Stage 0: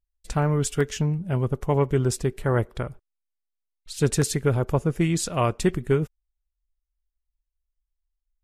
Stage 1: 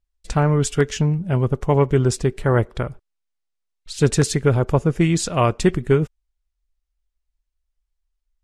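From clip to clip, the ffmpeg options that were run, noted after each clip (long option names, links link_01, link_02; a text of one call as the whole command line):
ffmpeg -i in.wav -af "lowpass=8200,volume=5dB" out.wav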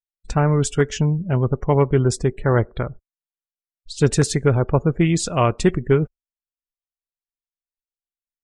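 ffmpeg -i in.wav -af "afftdn=noise_reduction=35:noise_floor=-39" out.wav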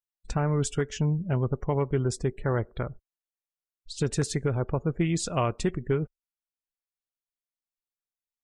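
ffmpeg -i in.wav -af "alimiter=limit=-9.5dB:level=0:latency=1:release=333,volume=-5.5dB" out.wav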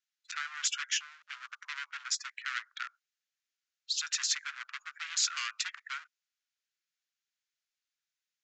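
ffmpeg -i in.wav -af "aresample=16000,asoftclip=type=hard:threshold=-30.5dB,aresample=44100,asuperpass=centerf=3300:order=12:qfactor=0.53,volume=8.5dB" out.wav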